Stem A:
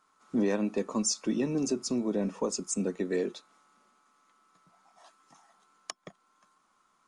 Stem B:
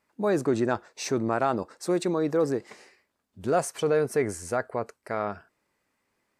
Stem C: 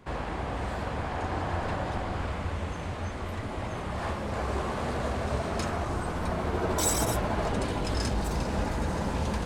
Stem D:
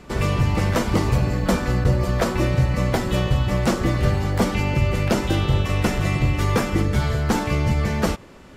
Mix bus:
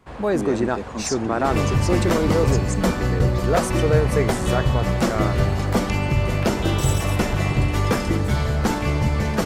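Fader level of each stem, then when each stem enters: −0.5, +3.0, −3.0, −0.5 decibels; 0.00, 0.00, 0.00, 1.35 seconds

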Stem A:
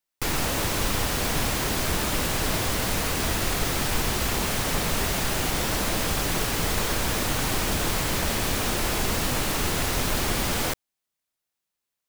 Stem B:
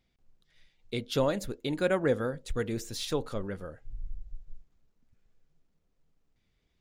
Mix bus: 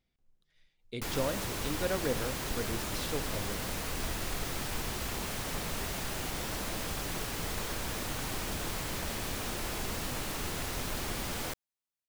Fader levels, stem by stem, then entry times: −10.5, −6.0 decibels; 0.80, 0.00 seconds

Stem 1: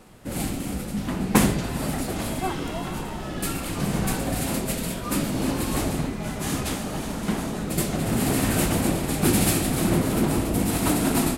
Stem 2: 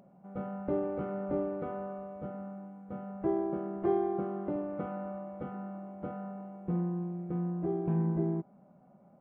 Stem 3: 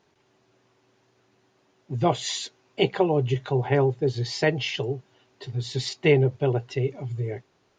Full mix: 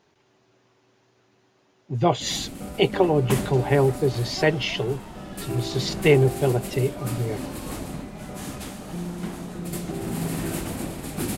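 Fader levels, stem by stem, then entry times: −8.0, −1.5, +2.0 decibels; 1.95, 2.25, 0.00 seconds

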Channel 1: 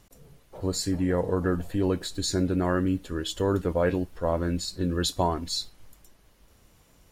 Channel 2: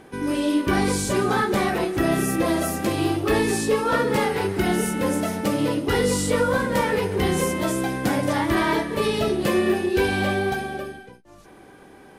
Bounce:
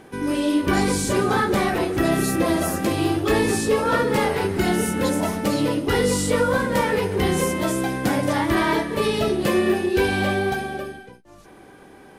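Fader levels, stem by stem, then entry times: −7.0, +1.0 decibels; 0.00, 0.00 seconds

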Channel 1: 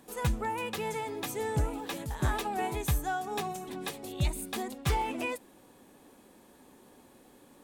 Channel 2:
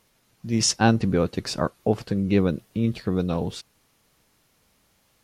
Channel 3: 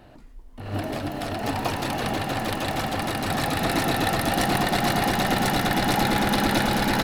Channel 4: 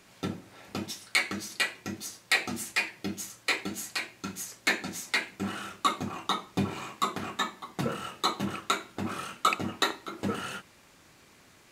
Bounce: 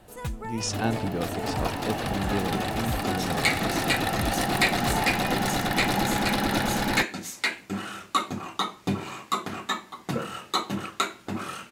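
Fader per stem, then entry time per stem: −3.5, −9.0, −3.5, +1.5 decibels; 0.00, 0.00, 0.00, 2.30 seconds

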